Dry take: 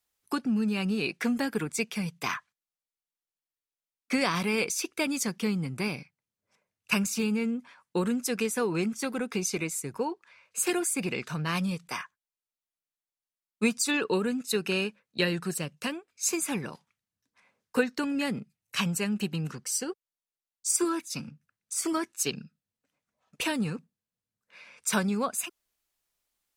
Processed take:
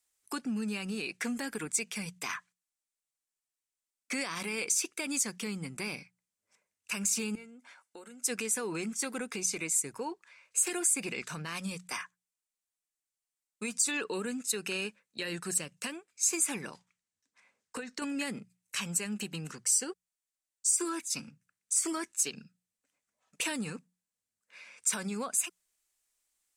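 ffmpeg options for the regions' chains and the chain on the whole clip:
-filter_complex "[0:a]asettb=1/sr,asplit=3[s0][s1][s2];[s0]atrim=end=7.354[s3];[s1]atrim=start=7.35:end=8.24,asetpts=PTS-STARTPTS,afade=t=in:d=0.004:c=qsin,afade=t=out:st=0.886:d=0.004:c=qsin,acompressor=threshold=0.00501:ratio=3:attack=3.2:release=140:knee=1:detection=peak,lowshelf=f=200:t=q:w=1.5:g=-13.5,aecho=1:1:1.4:0.4,atrim=end_sample=39249[s4];[s2]atrim=start=8.236[s5];[s3][s4]acrossfade=d=0.004:c1=hsin:c2=qsin[s6];[s6][s5]acrossfade=d=0.004:c1=qsin:c2=hsin,asettb=1/sr,asplit=3[s7][s8][s9];[s7]atrim=end=16.704[s10];[s8]atrim=start=16.7:end=18.02,asetpts=PTS-STARTPTS,afade=t=in:d=0.004:c=qsin,afade=t=out:st=1.316:d=0.004:c=qsin,lowpass=8800,bandreject=f=60:t=h:w=6,bandreject=f=120:t=h:w=6,acompressor=threshold=0.0316:ratio=12:attack=3.2:release=140:knee=1:detection=peak[s11];[s9]atrim=start=18.016[s12];[s10][s11]acrossfade=d=0.004:c1=hsin:c2=qsin[s13];[s13][s12]acrossfade=d=0.004:c1=qsin:c2=hsin,bandreject=f=60:t=h:w=6,bandreject=f=120:t=h:w=6,bandreject=f=180:t=h:w=6,alimiter=limit=0.0794:level=0:latency=1:release=82,equalizer=f=125:t=o:w=1:g=-6,equalizer=f=2000:t=o:w=1:g=4,equalizer=f=8000:t=o:w=1:g=12,volume=0.596"

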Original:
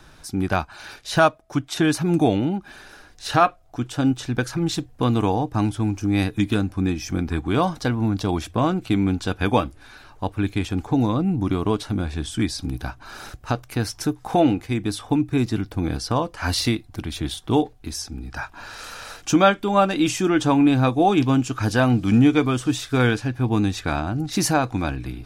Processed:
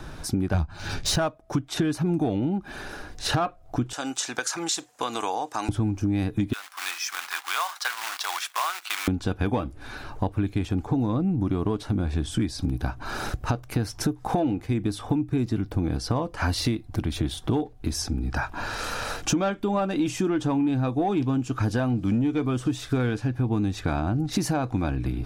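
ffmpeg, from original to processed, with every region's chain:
-filter_complex "[0:a]asettb=1/sr,asplit=3[s0][s1][s2];[s0]atrim=end=0.544[s3];[s1]atrim=start=0.54:end=1.16,asetpts=PTS-STARTPTS,afade=t=in:d=0.004:c=qsin,afade=t=out:st=0.616:d=0.004:c=qsin,bass=f=250:g=14,treble=f=4000:g=14,adynamicsmooth=sensitivity=4.5:basefreq=3400,asplit=2[s4][s5];[s5]adelay=12,volume=0.531[s6];[s4][s6]amix=inputs=2:normalize=0,atrim=end_sample=27342[s7];[s2]atrim=start=1.156[s8];[s3][s7]acrossfade=d=0.004:c1=hsin:c2=qsin[s9];[s9][s8]acrossfade=d=0.004:c1=qsin:c2=hsin,asettb=1/sr,asplit=3[s10][s11][s12];[s10]atrim=end=3.934[s13];[s11]atrim=start=3.93:end=5.69,asetpts=PTS-STARTPTS,afade=t=in:d=0.004:c=qsin,afade=t=out:st=1.756:d=0.004:c=qsin,highpass=850,acompressor=threshold=0.0141:ratio=1.5:attack=3.2:release=140:knee=1:detection=peak,equalizer=f=7100:t=o:w=0.96:g=12.5[s14];[s12]atrim=start=5.686[s15];[s13][s14]acrossfade=d=0.004:c1=hsin:c2=qsin[s16];[s16][s15]acrossfade=d=0.004:c1=qsin:c2=hsin,asettb=1/sr,asplit=3[s17][s18][s19];[s17]atrim=end=6.534[s20];[s18]atrim=start=6.53:end=9.08,asetpts=PTS-STARTPTS,afade=t=in:d=0.004:c=qsin,afade=t=out:st=2.546:d=0.004:c=qsin,acrusher=bits=3:mode=log:mix=0:aa=0.000001,highpass=f=1100:w=0.5412,highpass=f=1100:w=1.3066[s21];[s19]atrim=start=9.076[s22];[s20][s21]acrossfade=d=0.004:c1=hsin:c2=qsin[s23];[s23][s22]acrossfade=d=0.004:c1=qsin:c2=hsin,acontrast=81,tiltshelf=f=1100:g=4,acompressor=threshold=0.0708:ratio=6"

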